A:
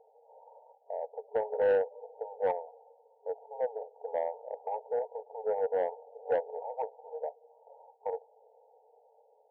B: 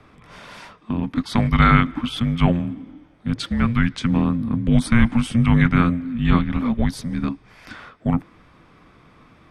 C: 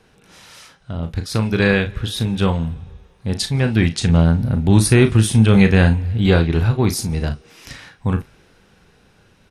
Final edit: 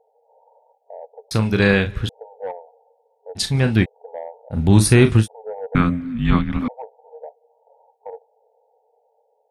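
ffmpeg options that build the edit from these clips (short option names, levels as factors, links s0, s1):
-filter_complex "[2:a]asplit=3[s0][s1][s2];[0:a]asplit=5[s3][s4][s5][s6][s7];[s3]atrim=end=1.312[s8];[s0]atrim=start=1.308:end=2.092[s9];[s4]atrim=start=2.088:end=3.39[s10];[s1]atrim=start=3.35:end=3.86[s11];[s5]atrim=start=3.82:end=4.6[s12];[s2]atrim=start=4.5:end=5.28[s13];[s6]atrim=start=5.18:end=5.752[s14];[1:a]atrim=start=5.748:end=6.682[s15];[s7]atrim=start=6.678[s16];[s8][s9]acrossfade=d=0.004:c1=hsin:c2=hsin[s17];[s17][s10]acrossfade=d=0.004:c1=hsin:c2=hsin[s18];[s18][s11]acrossfade=d=0.04:c1=tri:c2=tri[s19];[s19][s12]acrossfade=d=0.04:c1=tri:c2=tri[s20];[s20][s13]acrossfade=d=0.1:c1=tri:c2=tri[s21];[s21][s14]acrossfade=d=0.1:c1=tri:c2=tri[s22];[s22][s15]acrossfade=d=0.004:c1=hsin:c2=hsin[s23];[s23][s16]acrossfade=d=0.004:c1=hsin:c2=hsin"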